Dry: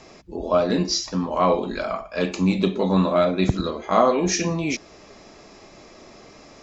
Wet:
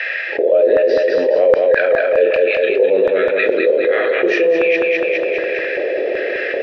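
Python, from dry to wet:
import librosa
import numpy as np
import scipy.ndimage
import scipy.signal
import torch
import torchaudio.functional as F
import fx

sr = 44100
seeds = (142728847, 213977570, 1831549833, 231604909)

p1 = scipy.signal.sosfilt(scipy.signal.butter(4, 3900.0, 'lowpass', fs=sr, output='sos'), x)
p2 = fx.rider(p1, sr, range_db=3, speed_s=0.5)
p3 = fx.vowel_filter(p2, sr, vowel='e')
p4 = fx.filter_lfo_highpass(p3, sr, shape='square', hz=1.3, low_hz=400.0, high_hz=1600.0, q=3.6)
p5 = p4 + fx.echo_feedback(p4, sr, ms=206, feedback_pct=51, wet_db=-5, dry=0)
p6 = fx.env_flatten(p5, sr, amount_pct=70)
y = F.gain(torch.from_numpy(p6), 4.5).numpy()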